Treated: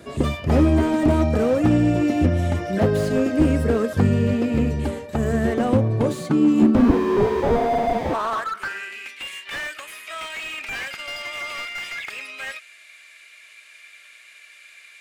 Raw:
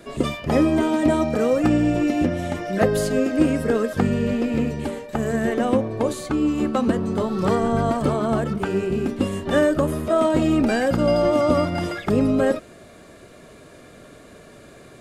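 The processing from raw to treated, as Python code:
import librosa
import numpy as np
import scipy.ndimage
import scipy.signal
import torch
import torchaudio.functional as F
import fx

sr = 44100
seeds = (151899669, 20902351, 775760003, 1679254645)

y = fx.filter_sweep_highpass(x, sr, from_hz=79.0, to_hz=2300.0, start_s=5.53, end_s=9.1, q=4.4)
y = fx.sample_hold(y, sr, seeds[0], rate_hz=1400.0, jitter_pct=0, at=(6.75, 8.14))
y = fx.slew_limit(y, sr, full_power_hz=89.0)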